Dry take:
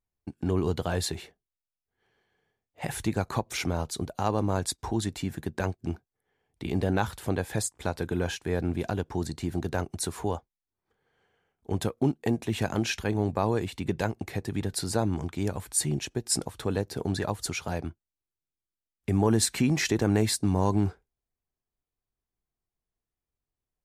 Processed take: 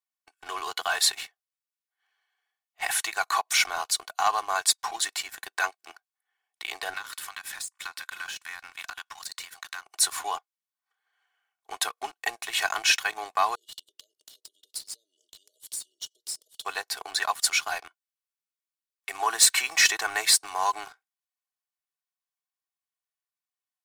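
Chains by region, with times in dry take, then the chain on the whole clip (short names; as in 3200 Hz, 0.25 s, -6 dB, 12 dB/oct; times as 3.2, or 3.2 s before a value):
6.94–9.85 HPF 970 Hz 24 dB/oct + compressor 8:1, threshold -41 dBFS
13.55–16.65 compressor 12:1, threshold -40 dBFS + brick-wall FIR band-stop 640–2800 Hz
whole clip: HPF 920 Hz 24 dB/oct; comb 2.7 ms, depth 71%; sample leveller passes 2; gain +1.5 dB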